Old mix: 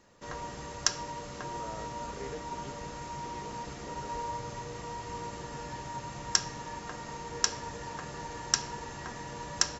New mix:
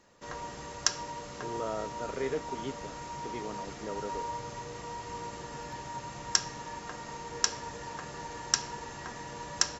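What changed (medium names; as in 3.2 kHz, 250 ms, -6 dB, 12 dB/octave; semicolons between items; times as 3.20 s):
speech +9.5 dB; background: add bass shelf 210 Hz -4 dB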